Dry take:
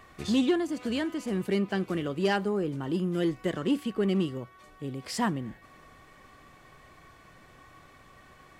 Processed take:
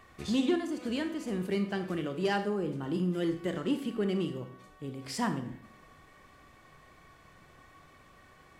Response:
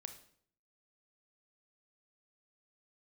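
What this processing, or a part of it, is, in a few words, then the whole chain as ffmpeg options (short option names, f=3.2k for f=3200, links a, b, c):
bathroom: -filter_complex "[1:a]atrim=start_sample=2205[a];[0:a][a]afir=irnorm=-1:irlink=0,volume=1.5dB"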